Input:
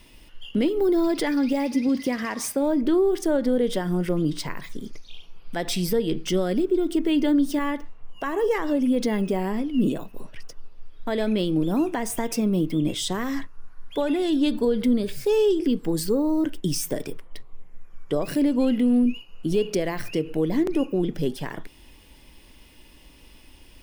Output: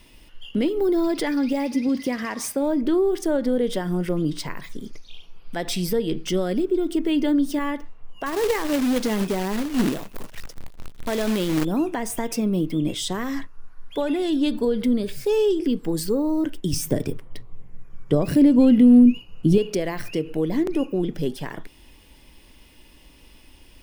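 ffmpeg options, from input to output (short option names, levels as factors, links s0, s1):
-filter_complex "[0:a]asettb=1/sr,asplit=3[s0][s1][s2];[s0]atrim=end=8.264[s3];[s1]atrim=start=8.26:end=11.65,asetpts=PTS-STARTPTS,afade=t=in:d=0.004:c=qsin,afade=t=out:st=3.386:d=0.004:c=qsin,acrusher=bits=2:mode=log:mix=0:aa=0.000001[s4];[s2]atrim=start=11.646[s5];[s3][s4]acrossfade=d=0.004:c1=hsin:c2=qsin[s6];[s6][s5]acrossfade=d=0.004:c1=qsin:c2=hsin,asettb=1/sr,asplit=3[s7][s8][s9];[s7]atrim=end=16.734[s10];[s8]atrim=start=16.73:end=19.58,asetpts=PTS-STARTPTS,afade=t=in:d=0.004:c=qsin,afade=t=out:st=2.846:d=0.004:c=qsin,equalizer=f=78:w=0.32:g=14[s11];[s9]atrim=start=19.576[s12];[s10][s11]acrossfade=d=0.004:c1=hsin:c2=qsin[s13];[s13][s12]acrossfade=d=0.004:c1=qsin:c2=hsin"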